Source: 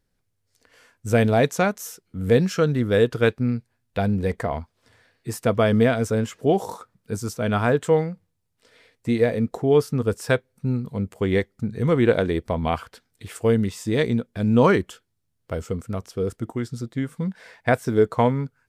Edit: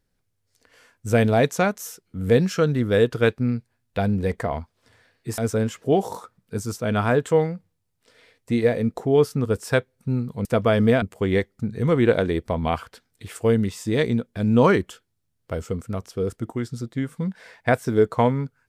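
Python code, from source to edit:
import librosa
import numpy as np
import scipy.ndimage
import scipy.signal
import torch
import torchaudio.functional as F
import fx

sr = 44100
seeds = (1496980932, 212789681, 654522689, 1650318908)

y = fx.edit(x, sr, fx.move(start_s=5.38, length_s=0.57, to_s=11.02), tone=tone)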